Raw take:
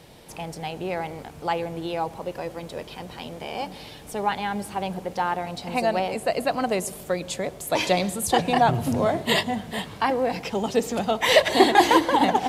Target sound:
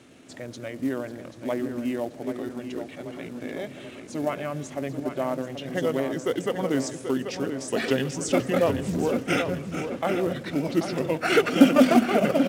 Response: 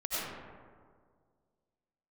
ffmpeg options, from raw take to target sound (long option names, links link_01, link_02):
-filter_complex "[0:a]highpass=170,equalizer=frequency=360:width_type=o:width=0.31:gain=10.5,acrusher=bits=6:mode=log:mix=0:aa=0.000001,asetrate=32097,aresample=44100,atempo=1.37395,asplit=2[link_01][link_02];[link_02]adelay=785,lowpass=frequency=4100:poles=1,volume=-8dB,asplit=2[link_03][link_04];[link_04]adelay=785,lowpass=frequency=4100:poles=1,volume=0.54,asplit=2[link_05][link_06];[link_06]adelay=785,lowpass=frequency=4100:poles=1,volume=0.54,asplit=2[link_07][link_08];[link_08]adelay=785,lowpass=frequency=4100:poles=1,volume=0.54,asplit=2[link_09][link_10];[link_10]adelay=785,lowpass=frequency=4100:poles=1,volume=0.54,asplit=2[link_11][link_12];[link_12]adelay=785,lowpass=frequency=4100:poles=1,volume=0.54[link_13];[link_03][link_05][link_07][link_09][link_11][link_13]amix=inputs=6:normalize=0[link_14];[link_01][link_14]amix=inputs=2:normalize=0,volume=-3.5dB"